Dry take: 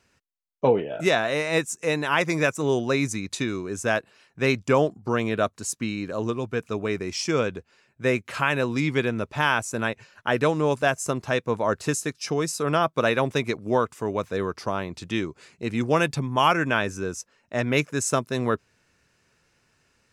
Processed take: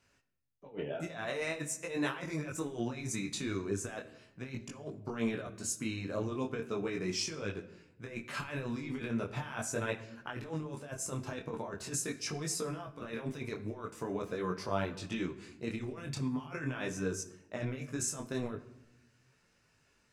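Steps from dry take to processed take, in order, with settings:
compressor whose output falls as the input rises −27 dBFS, ratio −0.5
rectangular room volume 300 cubic metres, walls mixed, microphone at 0.35 metres
micro pitch shift up and down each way 14 cents
level −6 dB

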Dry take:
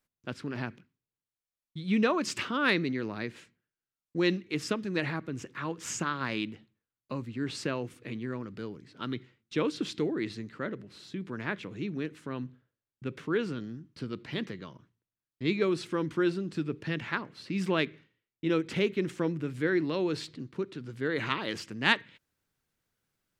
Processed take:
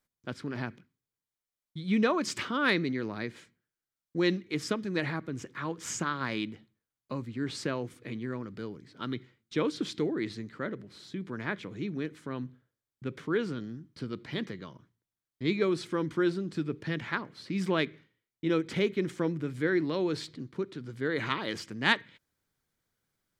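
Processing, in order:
notch filter 2,700 Hz, Q 10

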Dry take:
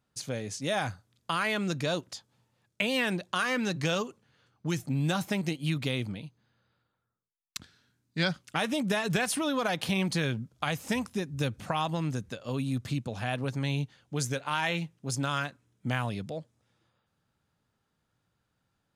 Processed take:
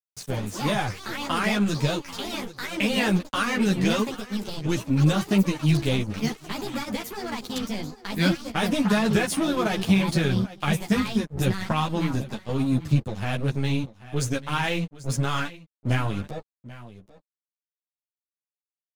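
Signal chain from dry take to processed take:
delay with pitch and tempo change per echo 87 ms, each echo +5 semitones, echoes 3, each echo −6 dB
dead-zone distortion −40.5 dBFS
low-shelf EQ 270 Hz +9.5 dB
single-tap delay 788 ms −17.5 dB
string-ensemble chorus
level +7 dB

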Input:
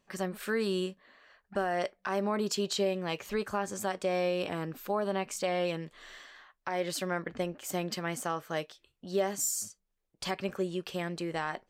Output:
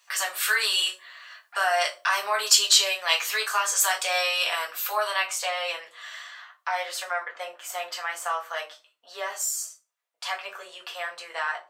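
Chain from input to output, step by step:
high-pass filter 890 Hz 24 dB per octave
high-shelf EQ 2,100 Hz +8 dB, from 0:05.22 −2.5 dB, from 0:06.83 −9 dB
convolution reverb RT60 0.35 s, pre-delay 4 ms, DRR −2.5 dB
level +7.5 dB

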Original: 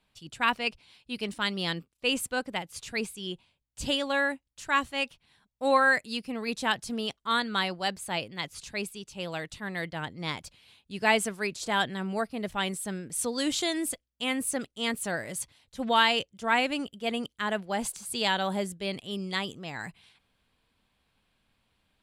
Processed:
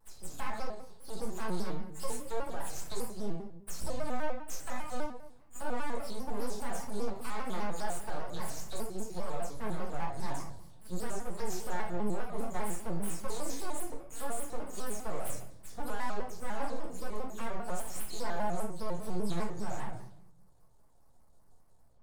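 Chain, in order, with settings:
every frequency bin delayed by itself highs early, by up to 100 ms
Chebyshev band-stop filter 870–7,000 Hz, order 2
parametric band 230 Hz −8 dB 1.1 octaves
downward compressor 2 to 1, threshold −44 dBFS, peak gain reduction 13 dB
brickwall limiter −37 dBFS, peak gain reduction 11.5 dB
half-wave rectification
rectangular room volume 150 cubic metres, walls mixed, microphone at 1.2 metres
pitch modulation by a square or saw wave square 5 Hz, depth 160 cents
level +7 dB

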